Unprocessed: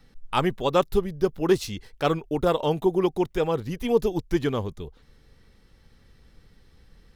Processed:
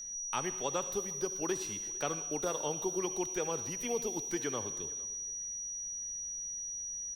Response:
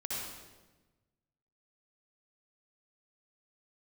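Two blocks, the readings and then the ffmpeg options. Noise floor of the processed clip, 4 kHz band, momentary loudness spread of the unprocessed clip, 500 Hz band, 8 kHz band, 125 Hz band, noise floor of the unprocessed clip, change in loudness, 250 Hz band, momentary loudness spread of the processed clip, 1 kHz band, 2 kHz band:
-40 dBFS, -9.0 dB, 6 LU, -13.0 dB, +16.5 dB, -16.5 dB, -57 dBFS, -10.0 dB, -13.5 dB, 3 LU, -11.5 dB, -8.5 dB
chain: -filter_complex "[0:a]tiltshelf=f=1200:g=-3,acrossover=split=110|270|2700[s0][s1][s2][s3];[s0]acompressor=threshold=0.00282:ratio=4[s4];[s1]acompressor=threshold=0.00708:ratio=4[s5];[s2]acompressor=threshold=0.0501:ratio=4[s6];[s3]acompressor=threshold=0.00631:ratio=4[s7];[s4][s5][s6][s7]amix=inputs=4:normalize=0,aeval=exprs='val(0)+0.0178*sin(2*PI*5800*n/s)':c=same,asplit=2[s8][s9];[s9]adelay=454.8,volume=0.0708,highshelf=f=4000:g=-10.2[s10];[s8][s10]amix=inputs=2:normalize=0,asplit=2[s11][s12];[1:a]atrim=start_sample=2205,highshelf=f=3700:g=11.5[s13];[s12][s13]afir=irnorm=-1:irlink=0,volume=0.178[s14];[s11][s14]amix=inputs=2:normalize=0,volume=0.422"

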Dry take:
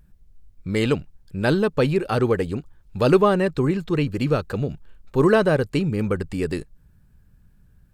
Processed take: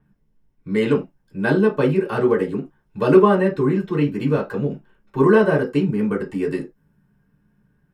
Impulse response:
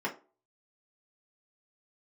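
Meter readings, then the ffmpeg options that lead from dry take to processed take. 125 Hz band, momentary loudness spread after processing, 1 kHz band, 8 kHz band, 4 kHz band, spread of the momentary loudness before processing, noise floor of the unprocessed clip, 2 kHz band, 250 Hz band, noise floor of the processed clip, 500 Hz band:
-0.5 dB, 15 LU, +2.0 dB, no reading, -4.5 dB, 12 LU, -56 dBFS, +2.0 dB, +3.0 dB, -65 dBFS, +3.0 dB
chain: -filter_complex "[1:a]atrim=start_sample=2205,afade=t=out:st=0.15:d=0.01,atrim=end_sample=7056[s0];[0:a][s0]afir=irnorm=-1:irlink=0,adynamicequalizer=threshold=0.0112:dfrequency=5400:dqfactor=0.7:tfrequency=5400:tqfactor=0.7:attack=5:release=100:ratio=0.375:range=3:mode=boostabove:tftype=highshelf,volume=0.501"

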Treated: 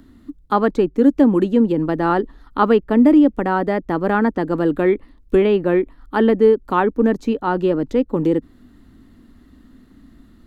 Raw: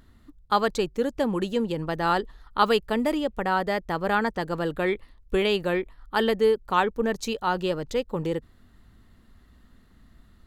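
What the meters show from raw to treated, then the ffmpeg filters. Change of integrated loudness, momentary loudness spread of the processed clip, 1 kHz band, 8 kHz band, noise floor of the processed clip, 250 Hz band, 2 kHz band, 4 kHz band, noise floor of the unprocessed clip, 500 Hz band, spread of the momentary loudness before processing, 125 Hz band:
+8.5 dB, 7 LU, +4.0 dB, no reading, -50 dBFS, +13.0 dB, +2.0 dB, -5.5 dB, -57 dBFS, +8.0 dB, 7 LU, +8.0 dB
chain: -filter_complex "[0:a]equalizer=f=280:w=1.9:g=15,acrossover=split=130|850|2300[s0][s1][s2][s3];[s3]acompressor=threshold=0.00251:ratio=5[s4];[s0][s1][s2][s4]amix=inputs=4:normalize=0,volume=1.5"

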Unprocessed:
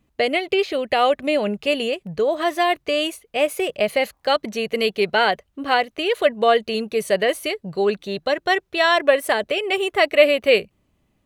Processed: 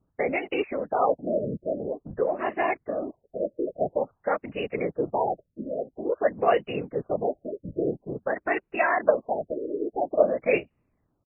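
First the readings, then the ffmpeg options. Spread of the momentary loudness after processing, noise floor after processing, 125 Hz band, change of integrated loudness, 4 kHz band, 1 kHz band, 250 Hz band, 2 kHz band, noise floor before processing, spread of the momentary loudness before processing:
9 LU, -75 dBFS, -0.5 dB, -7.5 dB, -23.5 dB, -6.5 dB, -5.0 dB, -10.5 dB, -68 dBFS, 6 LU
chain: -af "afftfilt=real='hypot(re,im)*cos(2*PI*random(0))':imag='hypot(re,im)*sin(2*PI*random(1))':win_size=512:overlap=0.75,aresample=32000,aresample=44100,afftfilt=real='re*lt(b*sr/1024,620*pow(3000/620,0.5+0.5*sin(2*PI*0.49*pts/sr)))':imag='im*lt(b*sr/1024,620*pow(3000/620,0.5+0.5*sin(2*PI*0.49*pts/sr)))':win_size=1024:overlap=0.75"

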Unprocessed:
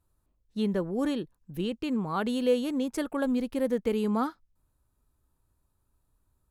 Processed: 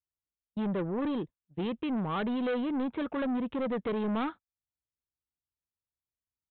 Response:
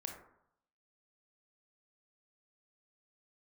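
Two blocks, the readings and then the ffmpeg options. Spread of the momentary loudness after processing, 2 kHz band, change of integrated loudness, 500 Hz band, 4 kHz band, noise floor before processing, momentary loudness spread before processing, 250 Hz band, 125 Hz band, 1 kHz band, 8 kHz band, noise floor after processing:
6 LU, -0.5 dB, -3.0 dB, -4.5 dB, -5.0 dB, -75 dBFS, 8 LU, -2.5 dB, -1.5 dB, -1.0 dB, under -30 dB, under -85 dBFS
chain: -af "highpass=62,agate=range=0.0282:threshold=0.01:ratio=16:detection=peak,aresample=8000,asoftclip=type=tanh:threshold=0.0266,aresample=44100,volume=1.5"

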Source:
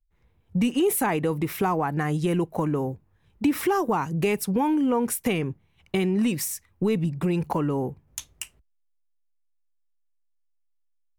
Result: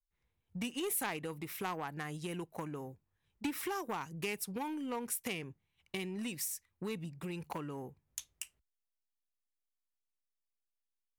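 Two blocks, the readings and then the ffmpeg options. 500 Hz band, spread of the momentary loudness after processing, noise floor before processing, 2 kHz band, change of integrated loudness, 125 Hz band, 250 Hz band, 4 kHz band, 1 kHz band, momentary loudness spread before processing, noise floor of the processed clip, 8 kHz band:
-16.0 dB, 10 LU, -69 dBFS, -9.5 dB, -14.5 dB, -17.5 dB, -17.0 dB, -7.5 dB, -14.0 dB, 11 LU, under -85 dBFS, -8.0 dB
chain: -af "aeval=exprs='0.237*(cos(1*acos(clip(val(0)/0.237,-1,1)))-cos(1*PI/2))+0.0015*(cos(2*acos(clip(val(0)/0.237,-1,1)))-cos(2*PI/2))+0.106*(cos(3*acos(clip(val(0)/0.237,-1,1)))-cos(3*PI/2))+0.0376*(cos(5*acos(clip(val(0)/0.237,-1,1)))-cos(5*PI/2))+0.00668*(cos(7*acos(clip(val(0)/0.237,-1,1)))-cos(7*PI/2))':c=same,asoftclip=type=tanh:threshold=0.1,tiltshelf=f=1400:g=-5,volume=0.841"

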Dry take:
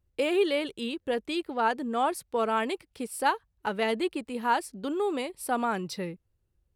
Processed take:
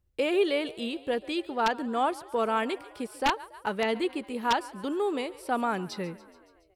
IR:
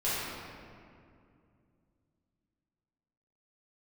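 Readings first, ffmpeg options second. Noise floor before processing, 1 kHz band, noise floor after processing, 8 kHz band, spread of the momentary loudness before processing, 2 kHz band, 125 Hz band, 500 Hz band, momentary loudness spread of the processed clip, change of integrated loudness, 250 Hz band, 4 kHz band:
-75 dBFS, -0.5 dB, -62 dBFS, -4.5 dB, 7 LU, 0.0 dB, no reading, 0.0 dB, 7 LU, 0.0 dB, 0.0 dB, +1.0 dB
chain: -filter_complex "[0:a]asplit=7[s0][s1][s2][s3][s4][s5][s6];[s1]adelay=141,afreqshift=38,volume=0.1[s7];[s2]adelay=282,afreqshift=76,volume=0.0638[s8];[s3]adelay=423,afreqshift=114,volume=0.0407[s9];[s4]adelay=564,afreqshift=152,volume=0.0263[s10];[s5]adelay=705,afreqshift=190,volume=0.0168[s11];[s6]adelay=846,afreqshift=228,volume=0.0107[s12];[s0][s7][s8][s9][s10][s11][s12]amix=inputs=7:normalize=0,aeval=exprs='(mod(5.62*val(0)+1,2)-1)/5.62':c=same,acrossover=split=5800[s13][s14];[s14]acompressor=threshold=0.00316:ratio=4:attack=1:release=60[s15];[s13][s15]amix=inputs=2:normalize=0"

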